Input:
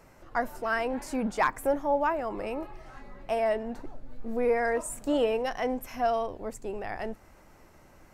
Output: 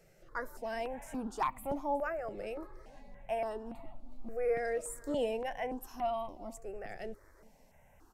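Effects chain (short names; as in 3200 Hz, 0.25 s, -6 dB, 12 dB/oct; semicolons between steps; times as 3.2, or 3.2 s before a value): echo 0.367 s -21.5 dB; step phaser 3.5 Hz 270–1600 Hz; gain -5 dB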